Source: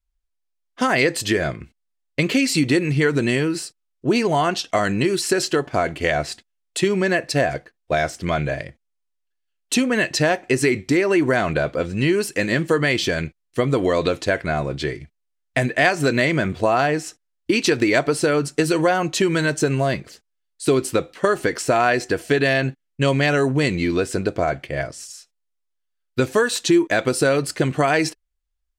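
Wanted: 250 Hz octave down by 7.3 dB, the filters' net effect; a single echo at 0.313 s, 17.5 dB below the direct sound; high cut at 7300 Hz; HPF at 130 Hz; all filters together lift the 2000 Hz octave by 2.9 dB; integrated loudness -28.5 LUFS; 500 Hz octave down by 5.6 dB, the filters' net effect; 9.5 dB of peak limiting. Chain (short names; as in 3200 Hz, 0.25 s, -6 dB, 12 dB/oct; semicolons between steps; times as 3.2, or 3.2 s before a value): HPF 130 Hz; LPF 7300 Hz; bell 250 Hz -8 dB; bell 500 Hz -5 dB; bell 2000 Hz +4 dB; limiter -10 dBFS; echo 0.313 s -17.5 dB; gain -5 dB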